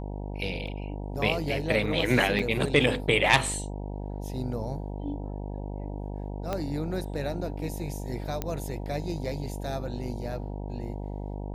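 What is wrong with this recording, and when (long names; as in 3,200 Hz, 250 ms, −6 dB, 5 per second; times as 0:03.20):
mains buzz 50 Hz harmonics 19 −35 dBFS
0:00.67: drop-out 4.3 ms
0:02.39: drop-out 4.5 ms
0:06.53: click −16 dBFS
0:08.42: click −15 dBFS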